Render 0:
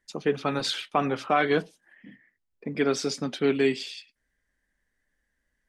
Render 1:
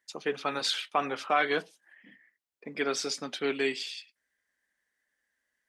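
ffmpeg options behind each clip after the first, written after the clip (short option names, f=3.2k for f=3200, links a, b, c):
-af "highpass=f=770:p=1"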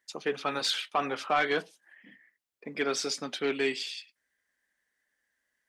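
-af "asoftclip=type=tanh:threshold=-17dB,volume=1dB"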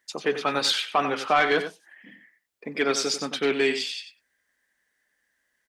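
-filter_complex "[0:a]asplit=2[a][b];[b]adelay=93.29,volume=-10dB,highshelf=f=4k:g=-2.1[c];[a][c]amix=inputs=2:normalize=0,volume=5.5dB"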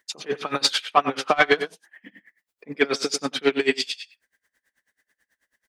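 -af "aeval=exprs='val(0)*pow(10,-25*(0.5-0.5*cos(2*PI*9.2*n/s))/20)':c=same,volume=7.5dB"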